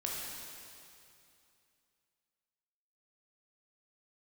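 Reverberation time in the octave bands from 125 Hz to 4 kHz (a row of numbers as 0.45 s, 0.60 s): 2.8 s, 2.8 s, 2.6 s, 2.7 s, 2.5 s, 2.5 s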